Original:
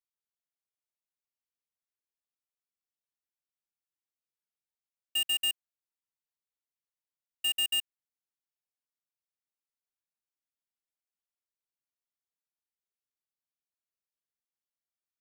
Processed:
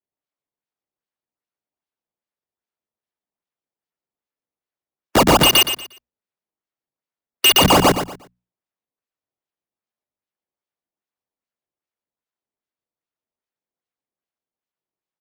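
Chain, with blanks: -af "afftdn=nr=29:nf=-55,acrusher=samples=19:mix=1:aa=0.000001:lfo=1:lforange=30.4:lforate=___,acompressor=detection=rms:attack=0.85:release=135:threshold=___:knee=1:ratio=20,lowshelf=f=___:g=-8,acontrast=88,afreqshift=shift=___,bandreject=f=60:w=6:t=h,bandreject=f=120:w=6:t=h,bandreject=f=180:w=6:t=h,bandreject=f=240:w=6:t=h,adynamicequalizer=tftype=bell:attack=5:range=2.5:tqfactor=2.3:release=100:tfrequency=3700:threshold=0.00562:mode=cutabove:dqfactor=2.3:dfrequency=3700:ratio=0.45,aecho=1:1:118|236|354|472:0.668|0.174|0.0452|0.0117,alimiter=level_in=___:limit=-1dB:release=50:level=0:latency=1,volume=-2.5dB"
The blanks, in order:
2.5, -32dB, 110, 19, 22dB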